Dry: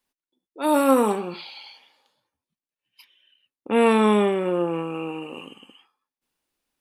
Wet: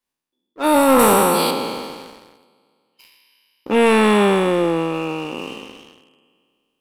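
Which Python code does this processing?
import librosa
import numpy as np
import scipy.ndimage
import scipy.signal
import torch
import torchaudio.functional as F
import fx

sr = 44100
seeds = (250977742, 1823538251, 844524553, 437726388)

y = fx.spec_trails(x, sr, decay_s=2.27)
y = fx.high_shelf(y, sr, hz=2500.0, db=10.0, at=(0.99, 1.51))
y = fx.leveller(y, sr, passes=2)
y = F.gain(torch.from_numpy(y), -2.5).numpy()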